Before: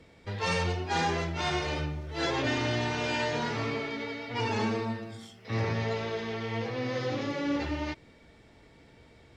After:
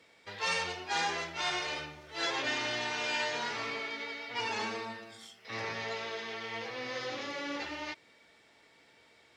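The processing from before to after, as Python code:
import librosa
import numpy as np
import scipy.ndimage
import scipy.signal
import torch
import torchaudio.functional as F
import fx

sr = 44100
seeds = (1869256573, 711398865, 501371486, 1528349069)

y = fx.highpass(x, sr, hz=1200.0, slope=6)
y = F.gain(torch.from_numpy(y), 1.0).numpy()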